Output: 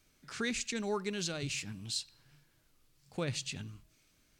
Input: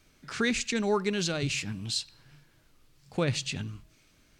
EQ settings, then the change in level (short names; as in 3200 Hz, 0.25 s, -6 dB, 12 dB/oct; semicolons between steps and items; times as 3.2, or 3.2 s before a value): high shelf 6200 Hz +7.5 dB; -8.0 dB